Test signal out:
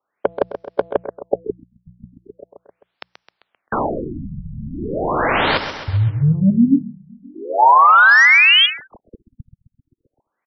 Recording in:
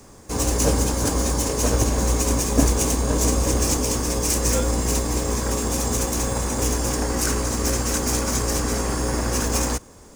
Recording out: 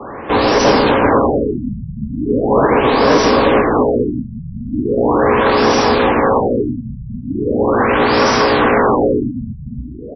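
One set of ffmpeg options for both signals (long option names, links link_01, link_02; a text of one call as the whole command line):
ffmpeg -i in.wav -filter_complex "[0:a]acrossover=split=120|890|5200[link_01][link_02][link_03][link_04];[link_02]crystalizer=i=3.5:c=0[link_05];[link_01][link_05][link_03][link_04]amix=inputs=4:normalize=0,afftfilt=real='re*lt(hypot(re,im),0.891)':imag='im*lt(hypot(re,im),0.891)':win_size=1024:overlap=0.75,bandreject=frequency=60:width_type=h:width=6,bandreject=frequency=120:width_type=h:width=6,bandreject=frequency=180:width_type=h:width=6,asplit=2[link_06][link_07];[link_07]highpass=frequency=720:poles=1,volume=25dB,asoftclip=type=tanh:threshold=-7.5dB[link_08];[link_06][link_08]amix=inputs=2:normalize=0,lowpass=frequency=2200:poles=1,volume=-6dB,aecho=1:1:131|262|393|524|655|786:0.299|0.167|0.0936|0.0524|0.0294|0.0164,afftfilt=real='re*lt(b*sr/1024,210*pow(6000/210,0.5+0.5*sin(2*PI*0.39*pts/sr)))':imag='im*lt(b*sr/1024,210*pow(6000/210,0.5+0.5*sin(2*PI*0.39*pts/sr)))':win_size=1024:overlap=0.75,volume=6.5dB" out.wav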